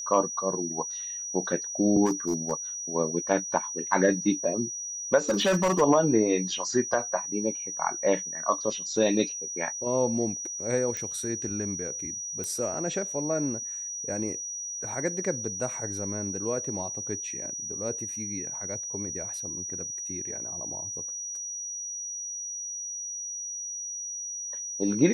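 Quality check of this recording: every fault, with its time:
tone 5800 Hz -33 dBFS
2.05–2.52 clipped -21 dBFS
5.29–5.82 clipped -19.5 dBFS
10.97 pop -19 dBFS
12.44 pop -20 dBFS

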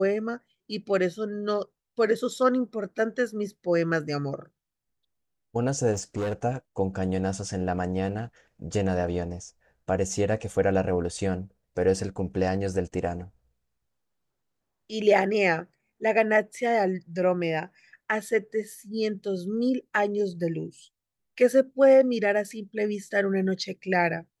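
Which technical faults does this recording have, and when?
5.92–6.33 clipped -25 dBFS

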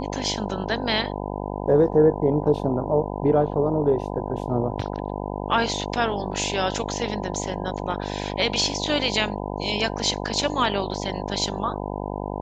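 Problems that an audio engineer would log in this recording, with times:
buzz 50 Hz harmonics 20 -30 dBFS

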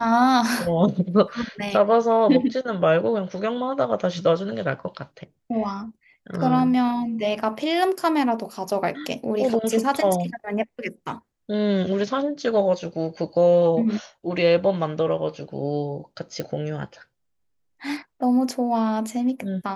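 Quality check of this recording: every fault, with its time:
16.4 pop -15 dBFS

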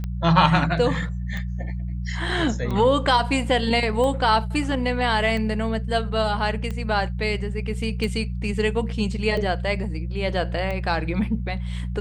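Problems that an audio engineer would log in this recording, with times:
hum 60 Hz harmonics 3 -28 dBFS
tick 45 rpm -18 dBFS

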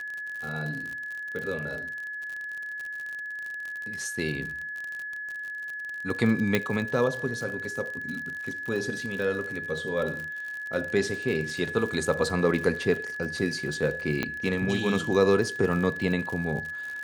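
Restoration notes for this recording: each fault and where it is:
crackle 55/s -32 dBFS
tone 1700 Hz -33 dBFS
6.55 pop -9 dBFS
14.23 pop -13 dBFS

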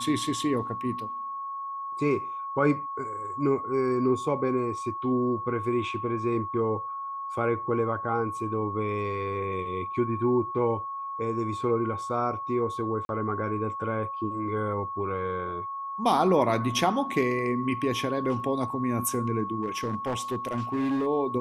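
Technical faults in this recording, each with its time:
tone 1100 Hz -32 dBFS
13.05–13.09 gap 41 ms
19.62–21.07 clipped -23.5 dBFS

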